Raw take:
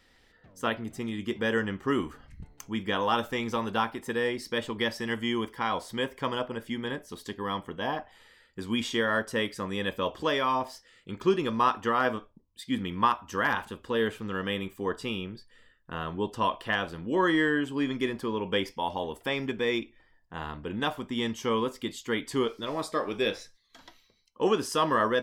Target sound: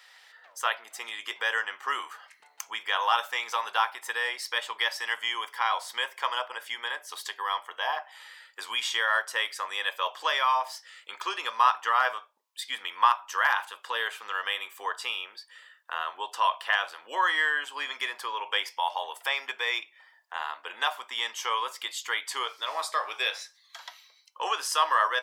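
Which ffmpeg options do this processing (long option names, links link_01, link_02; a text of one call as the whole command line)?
ffmpeg -i in.wav -filter_complex "[0:a]highpass=frequency=770:width=0.5412,highpass=frequency=770:width=1.3066,asplit=2[link_01][link_02];[link_02]acompressor=threshold=-45dB:ratio=6,volume=2.5dB[link_03];[link_01][link_03]amix=inputs=2:normalize=0,volume=2.5dB" out.wav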